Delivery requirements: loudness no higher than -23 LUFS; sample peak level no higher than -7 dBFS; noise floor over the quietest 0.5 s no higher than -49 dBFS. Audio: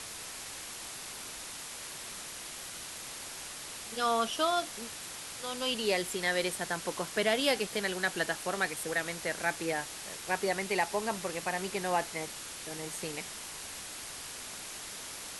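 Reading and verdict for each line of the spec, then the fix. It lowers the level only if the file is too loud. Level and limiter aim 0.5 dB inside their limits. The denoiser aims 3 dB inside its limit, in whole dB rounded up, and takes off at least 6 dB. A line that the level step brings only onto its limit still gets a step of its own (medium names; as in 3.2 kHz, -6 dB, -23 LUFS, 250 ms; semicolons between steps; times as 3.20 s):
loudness -34.0 LUFS: pass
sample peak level -14.5 dBFS: pass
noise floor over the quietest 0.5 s -43 dBFS: fail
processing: noise reduction 9 dB, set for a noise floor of -43 dBFS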